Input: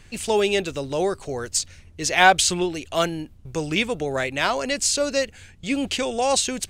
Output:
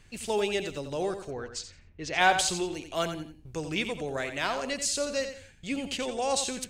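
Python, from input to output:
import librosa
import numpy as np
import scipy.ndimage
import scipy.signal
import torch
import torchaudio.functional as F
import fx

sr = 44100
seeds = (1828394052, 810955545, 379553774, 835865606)

y = fx.echo_feedback(x, sr, ms=88, feedback_pct=29, wet_db=-9)
y = fx.env_lowpass(y, sr, base_hz=1800.0, full_db=-13.0, at=(1.3, 2.37), fade=0.02)
y = F.gain(torch.from_numpy(y), -8.0).numpy()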